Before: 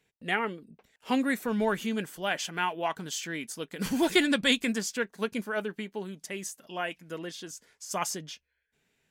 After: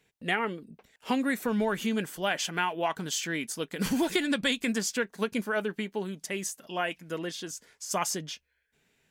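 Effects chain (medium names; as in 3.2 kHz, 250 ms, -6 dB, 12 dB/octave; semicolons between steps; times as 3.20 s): compression 6:1, threshold -27 dBFS, peak gain reduction 9.5 dB; trim +3.5 dB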